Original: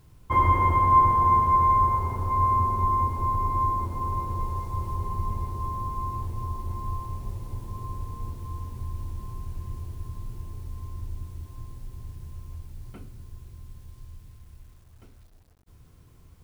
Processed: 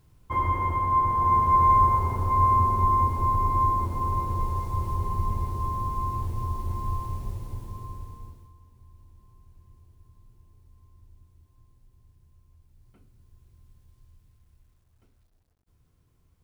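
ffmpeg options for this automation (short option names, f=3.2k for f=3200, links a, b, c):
-af "volume=9dB,afade=t=in:st=1.02:d=0.71:silence=0.446684,afade=t=out:st=7.07:d=1.03:silence=0.398107,afade=t=out:st=8.1:d=0.43:silence=0.223872,afade=t=in:st=12.57:d=1.01:silence=0.446684"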